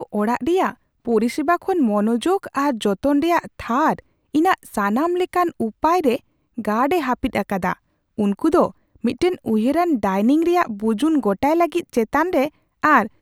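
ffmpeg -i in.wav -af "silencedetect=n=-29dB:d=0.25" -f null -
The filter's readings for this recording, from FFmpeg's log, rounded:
silence_start: 0.71
silence_end: 1.07 | silence_duration: 0.36
silence_start: 3.99
silence_end: 4.35 | silence_duration: 0.36
silence_start: 6.17
silence_end: 6.58 | silence_duration: 0.41
silence_start: 7.73
silence_end: 8.18 | silence_duration: 0.45
silence_start: 8.68
silence_end: 9.04 | silence_duration: 0.36
silence_start: 12.48
silence_end: 12.83 | silence_duration: 0.35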